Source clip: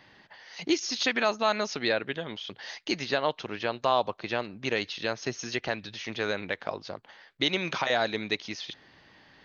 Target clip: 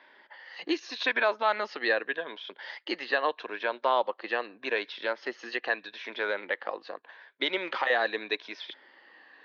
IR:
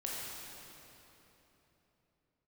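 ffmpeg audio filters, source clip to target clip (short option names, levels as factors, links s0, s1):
-af "afftfilt=real='re*pow(10,7/40*sin(2*PI*(1.6*log(max(b,1)*sr/1024/100)/log(2)-(-0.82)*(pts-256)/sr)))':imag='im*pow(10,7/40*sin(2*PI*(1.6*log(max(b,1)*sr/1024/100)/log(2)-(-0.82)*(pts-256)/sr)))':win_size=1024:overlap=0.75,highpass=f=290:w=0.5412,highpass=f=290:w=1.3066,equalizer=f=520:t=q:w=4:g=4,equalizer=f=1000:t=q:w=4:g=6,equalizer=f=1700:t=q:w=4:g=8,lowpass=f=4200:w=0.5412,lowpass=f=4200:w=1.3066,volume=0.668"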